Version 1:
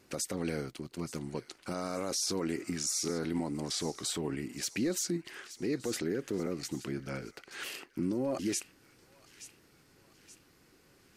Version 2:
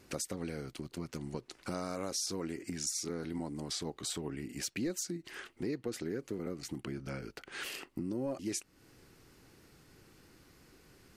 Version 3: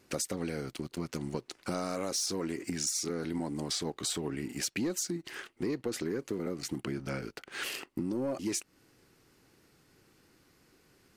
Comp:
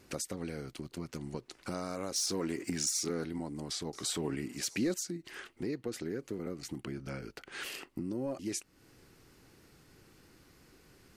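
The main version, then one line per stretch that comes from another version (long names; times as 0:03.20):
2
0:02.16–0:03.24: punch in from 3
0:03.93–0:04.94: punch in from 1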